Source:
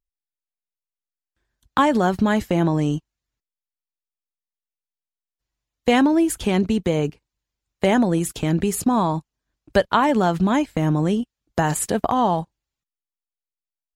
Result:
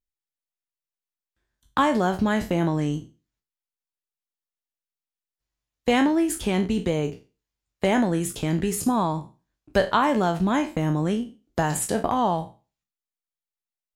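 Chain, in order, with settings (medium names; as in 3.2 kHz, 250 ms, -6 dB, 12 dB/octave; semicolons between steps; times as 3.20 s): spectral sustain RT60 0.32 s; trim -4 dB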